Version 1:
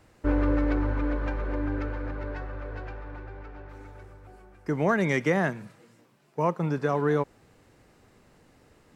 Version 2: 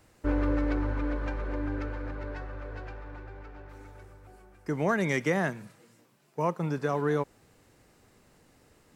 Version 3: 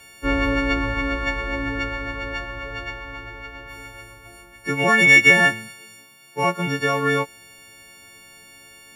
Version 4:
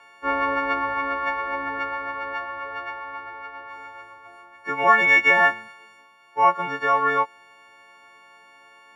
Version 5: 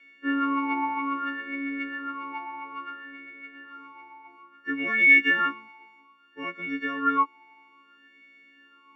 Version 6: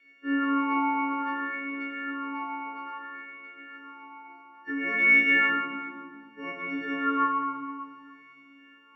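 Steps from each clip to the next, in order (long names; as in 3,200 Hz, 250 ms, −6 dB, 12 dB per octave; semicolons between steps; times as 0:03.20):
high-shelf EQ 5,400 Hz +8 dB; level −3 dB
every partial snapped to a pitch grid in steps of 4 semitones; parametric band 2,400 Hz +12 dB 0.97 octaves; level +5 dB
resonant band-pass 1,000 Hz, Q 2.4; level +8 dB
formant filter swept between two vowels i-u 0.6 Hz; level +8.5 dB
convolution reverb RT60 2.0 s, pre-delay 6 ms, DRR −4.5 dB; level −6 dB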